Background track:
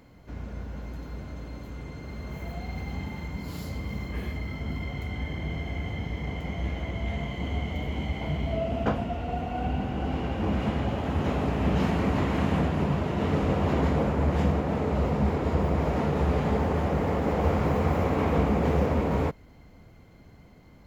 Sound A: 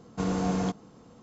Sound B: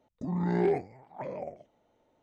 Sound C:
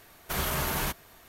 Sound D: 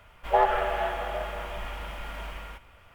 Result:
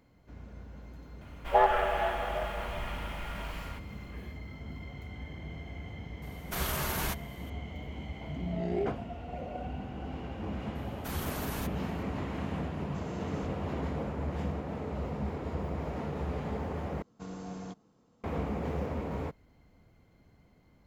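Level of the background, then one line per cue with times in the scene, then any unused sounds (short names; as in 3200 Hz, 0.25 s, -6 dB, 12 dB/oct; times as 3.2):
background track -10 dB
1.21 add D -1.5 dB
6.22 add C -3.5 dB
8.13 add B -6 dB + band shelf 1200 Hz -16 dB 1 oct
10.75 add C -10 dB + shaped vibrato saw up 5.4 Hz, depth 100 cents
12.76 add A -12.5 dB + level quantiser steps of 10 dB
17.02 replace with A -14 dB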